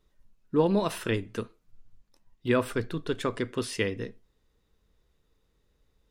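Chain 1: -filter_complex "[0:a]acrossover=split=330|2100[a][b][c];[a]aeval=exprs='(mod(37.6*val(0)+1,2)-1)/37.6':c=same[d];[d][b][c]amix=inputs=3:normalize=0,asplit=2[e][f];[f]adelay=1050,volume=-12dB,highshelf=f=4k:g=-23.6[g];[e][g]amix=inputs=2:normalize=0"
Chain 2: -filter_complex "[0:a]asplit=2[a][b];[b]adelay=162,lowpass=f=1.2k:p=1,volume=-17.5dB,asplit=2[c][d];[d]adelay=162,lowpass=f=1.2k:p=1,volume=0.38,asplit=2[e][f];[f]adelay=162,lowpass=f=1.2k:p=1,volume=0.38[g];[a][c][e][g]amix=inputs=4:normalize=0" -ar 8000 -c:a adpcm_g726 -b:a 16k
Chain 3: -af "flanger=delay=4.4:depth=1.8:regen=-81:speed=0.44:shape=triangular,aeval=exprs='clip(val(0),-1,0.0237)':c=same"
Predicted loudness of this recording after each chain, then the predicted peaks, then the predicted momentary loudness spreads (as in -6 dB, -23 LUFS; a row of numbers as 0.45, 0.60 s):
-32.5, -29.5, -36.0 LUFS; -13.5, -11.5, -17.5 dBFS; 18, 13, 12 LU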